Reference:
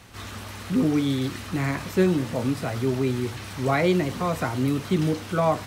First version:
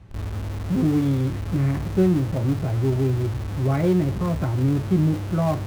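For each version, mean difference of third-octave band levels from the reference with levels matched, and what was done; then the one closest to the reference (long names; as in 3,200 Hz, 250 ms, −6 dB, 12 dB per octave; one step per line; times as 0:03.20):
5.5 dB: spectral tilt −4 dB per octave
notch comb filter 240 Hz
in parallel at −10 dB: comparator with hysteresis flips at −29 dBFS
on the sum: level −6.5 dB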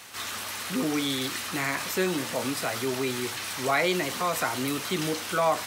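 8.0 dB: high-pass filter 970 Hz 6 dB per octave
high-shelf EQ 6,500 Hz +6 dB
in parallel at −1 dB: brickwall limiter −25.5 dBFS, peak gain reduction 11 dB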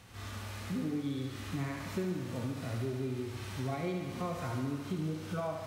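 3.5 dB: harmonic and percussive parts rebalanced percussive −17 dB
downward compressor, threshold −30 dBFS, peak gain reduction 13.5 dB
on a send: feedback echo with a high-pass in the loop 71 ms, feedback 77%, high-pass 190 Hz, level −6.5 dB
on the sum: level −3.5 dB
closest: third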